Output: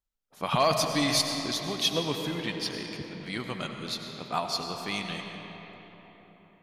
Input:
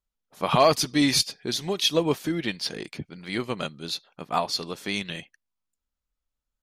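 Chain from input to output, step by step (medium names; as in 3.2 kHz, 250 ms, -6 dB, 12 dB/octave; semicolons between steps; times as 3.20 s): dynamic bell 400 Hz, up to -6 dB, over -36 dBFS, Q 1.1; on a send: reverberation RT60 4.3 s, pre-delay 55 ms, DRR 3.5 dB; on the sum: trim -3.5 dB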